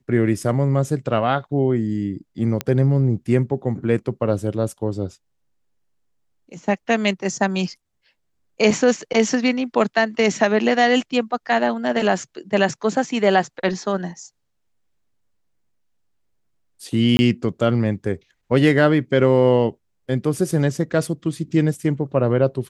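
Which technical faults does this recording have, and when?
0:02.61: click −8 dBFS
0:17.17–0:17.19: drop-out 20 ms

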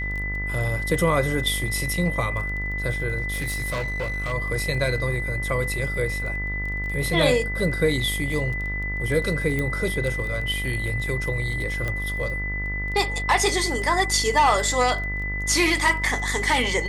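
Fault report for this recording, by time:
mains buzz 50 Hz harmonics 39 −30 dBFS
surface crackle 13 per second −30 dBFS
whistle 2,000 Hz −28 dBFS
0:03.32–0:04.33: clipping −23 dBFS
0:09.59: click −14 dBFS
0:11.88: click −15 dBFS

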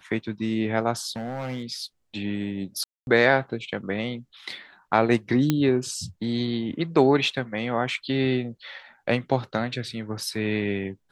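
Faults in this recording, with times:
0:01.11–0:01.70: clipping −27.5 dBFS
0:02.84–0:03.07: drop-out 231 ms
0:05.50: click −8 dBFS

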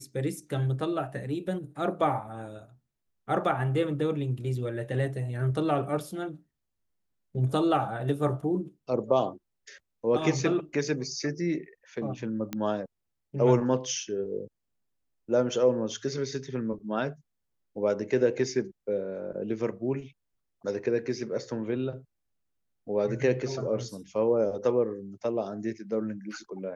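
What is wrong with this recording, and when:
0:12.53: click −18 dBFS

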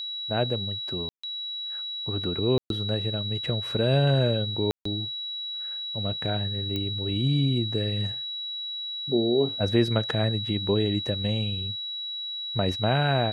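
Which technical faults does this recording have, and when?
whistle 3,900 Hz −31 dBFS
0:01.09–0:01.24: drop-out 145 ms
0:02.58–0:02.70: drop-out 122 ms
0:04.71–0:04.85: drop-out 144 ms
0:06.76: click −17 dBFS

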